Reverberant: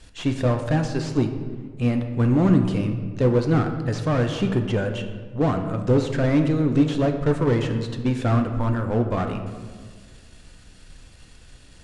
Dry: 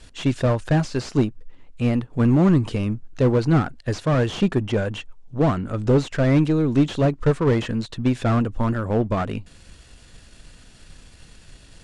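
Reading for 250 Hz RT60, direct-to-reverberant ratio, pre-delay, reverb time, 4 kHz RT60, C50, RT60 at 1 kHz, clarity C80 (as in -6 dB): 2.0 s, 5.0 dB, 3 ms, 1.7 s, 0.95 s, 8.0 dB, 1.5 s, 9.5 dB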